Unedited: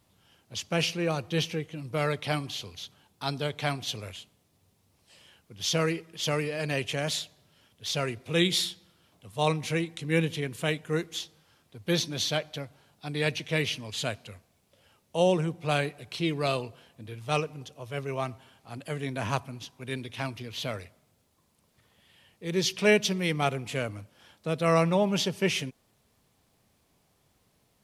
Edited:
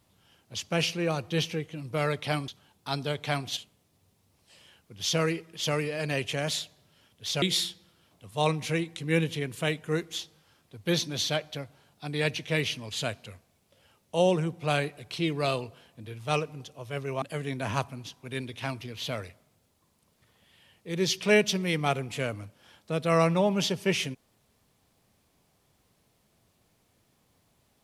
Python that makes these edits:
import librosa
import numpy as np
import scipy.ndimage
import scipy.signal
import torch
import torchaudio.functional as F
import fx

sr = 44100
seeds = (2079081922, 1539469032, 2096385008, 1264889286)

y = fx.edit(x, sr, fx.cut(start_s=2.48, length_s=0.35),
    fx.cut(start_s=3.92, length_s=0.25),
    fx.cut(start_s=8.02, length_s=0.41),
    fx.cut(start_s=18.23, length_s=0.55), tone=tone)